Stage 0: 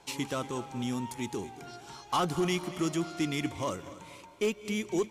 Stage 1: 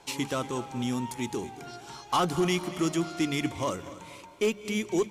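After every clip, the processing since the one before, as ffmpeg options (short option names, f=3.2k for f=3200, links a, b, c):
-af "bandreject=f=50:t=h:w=6,bandreject=f=100:t=h:w=6,bandreject=f=150:t=h:w=6,bandreject=f=200:t=h:w=6,volume=3dB"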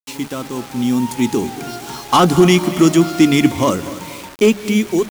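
-af "equalizer=f=240:t=o:w=0.94:g=7,dynaudnorm=f=420:g=5:m=12dB,acrusher=bits=5:mix=0:aa=0.000001,volume=2dB"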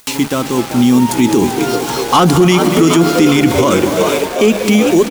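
-filter_complex "[0:a]asplit=2[a][b];[b]asplit=8[c][d][e][f][g][h][i][j];[c]adelay=387,afreqshift=72,volume=-11dB[k];[d]adelay=774,afreqshift=144,volume=-14.9dB[l];[e]adelay=1161,afreqshift=216,volume=-18.8dB[m];[f]adelay=1548,afreqshift=288,volume=-22.6dB[n];[g]adelay=1935,afreqshift=360,volume=-26.5dB[o];[h]adelay=2322,afreqshift=432,volume=-30.4dB[p];[i]adelay=2709,afreqshift=504,volume=-34.3dB[q];[j]adelay=3096,afreqshift=576,volume=-38.1dB[r];[k][l][m][n][o][p][q][r]amix=inputs=8:normalize=0[s];[a][s]amix=inputs=2:normalize=0,acompressor=mode=upward:threshold=-25dB:ratio=2.5,alimiter=level_in=10dB:limit=-1dB:release=50:level=0:latency=1,volume=-1dB"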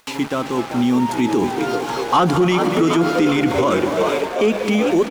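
-filter_complex "[0:a]asplit=2[a][b];[b]highpass=f=720:p=1,volume=6dB,asoftclip=type=tanh:threshold=-1.5dB[c];[a][c]amix=inputs=2:normalize=0,lowpass=f=1.6k:p=1,volume=-6dB,volume=-3.5dB"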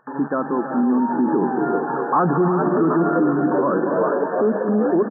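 -af "aecho=1:1:324:0.299,alimiter=limit=-10dB:level=0:latency=1:release=73,afftfilt=real='re*between(b*sr/4096,130,1800)':imag='im*between(b*sr/4096,130,1800)':win_size=4096:overlap=0.75"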